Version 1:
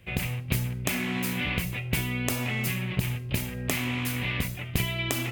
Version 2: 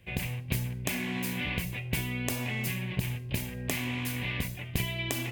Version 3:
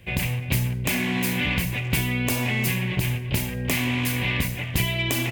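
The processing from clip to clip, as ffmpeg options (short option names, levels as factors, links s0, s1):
-af "bandreject=f=1300:w=6.4,volume=0.668"
-filter_complex "[0:a]aeval=exprs='0.211*sin(PI/2*1.78*val(0)/0.211)':c=same,asplit=2[s0][s1];[s1]adelay=340,highpass=300,lowpass=3400,asoftclip=type=hard:threshold=0.075,volume=0.282[s2];[s0][s2]amix=inputs=2:normalize=0"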